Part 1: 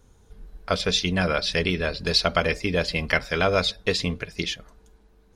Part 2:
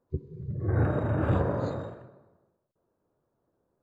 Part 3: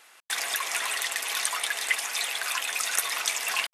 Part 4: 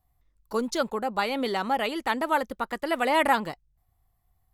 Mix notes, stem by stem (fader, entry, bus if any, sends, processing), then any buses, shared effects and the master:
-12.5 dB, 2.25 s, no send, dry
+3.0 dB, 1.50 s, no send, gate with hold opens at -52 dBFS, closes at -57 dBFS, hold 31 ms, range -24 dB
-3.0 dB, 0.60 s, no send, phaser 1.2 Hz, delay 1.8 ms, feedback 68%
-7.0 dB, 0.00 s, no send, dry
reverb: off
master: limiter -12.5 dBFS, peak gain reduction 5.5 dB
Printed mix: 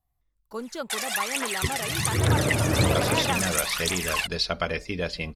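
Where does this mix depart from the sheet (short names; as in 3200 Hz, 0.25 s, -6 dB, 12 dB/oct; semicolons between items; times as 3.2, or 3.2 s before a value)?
stem 1 -12.5 dB -> -5.5 dB; master: missing limiter -12.5 dBFS, peak gain reduction 5.5 dB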